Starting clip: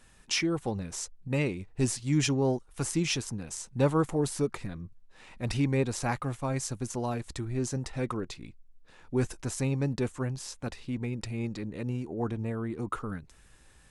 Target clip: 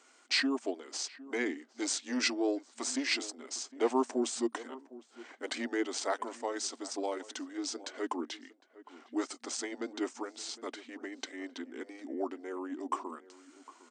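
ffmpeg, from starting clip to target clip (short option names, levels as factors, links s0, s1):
-filter_complex "[0:a]asetrate=36028,aresample=44100,atempo=1.22405,acrossover=split=300|1300|1900[s0][s1][s2][s3];[s0]asoftclip=type=tanh:threshold=0.0282[s4];[s4][s1][s2][s3]amix=inputs=4:normalize=0,asplit=2[s5][s6];[s6]adelay=758,volume=0.126,highshelf=f=4000:g=-17.1[s7];[s5][s7]amix=inputs=2:normalize=0,afftfilt=real='re*between(b*sr/4096,230,9100)':imag='im*between(b*sr/4096,230,9100)':win_size=4096:overlap=0.75"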